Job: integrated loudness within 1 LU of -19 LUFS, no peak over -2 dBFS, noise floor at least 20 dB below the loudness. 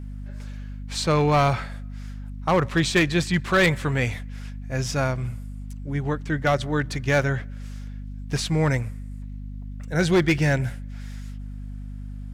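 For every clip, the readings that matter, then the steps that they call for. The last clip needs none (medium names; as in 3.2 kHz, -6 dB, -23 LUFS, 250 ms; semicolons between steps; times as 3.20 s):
clipped samples 0.6%; clipping level -13.5 dBFS; hum 50 Hz; highest harmonic 250 Hz; hum level -32 dBFS; loudness -23.5 LUFS; peak level -13.5 dBFS; loudness target -19.0 LUFS
-> clip repair -13.5 dBFS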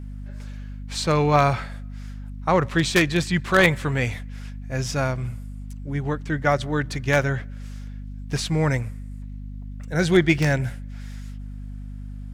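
clipped samples 0.0%; hum 50 Hz; highest harmonic 250 Hz; hum level -32 dBFS
-> hum notches 50/100/150/200/250 Hz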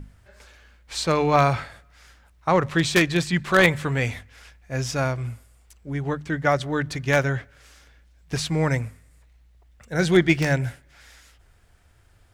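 hum not found; loudness -23.0 LUFS; peak level -4.5 dBFS; loudness target -19.0 LUFS
-> trim +4 dB; peak limiter -2 dBFS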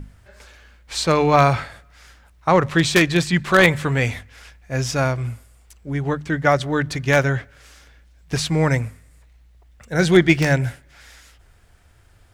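loudness -19.0 LUFS; peak level -2.0 dBFS; noise floor -53 dBFS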